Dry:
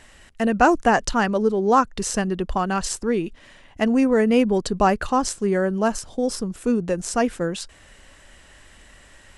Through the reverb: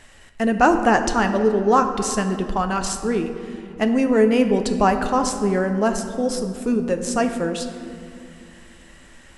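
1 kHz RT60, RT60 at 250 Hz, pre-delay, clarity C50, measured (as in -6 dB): 2.3 s, 3.7 s, 7 ms, 8.5 dB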